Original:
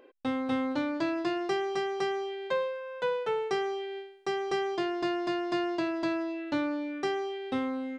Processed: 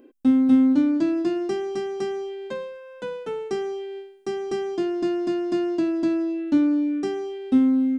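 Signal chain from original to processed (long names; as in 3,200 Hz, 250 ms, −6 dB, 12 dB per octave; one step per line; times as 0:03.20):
octave-band graphic EQ 125/250/500/1,000/2,000/4,000 Hz −9/+12/−9/−10/−9/−9 dB
level +7.5 dB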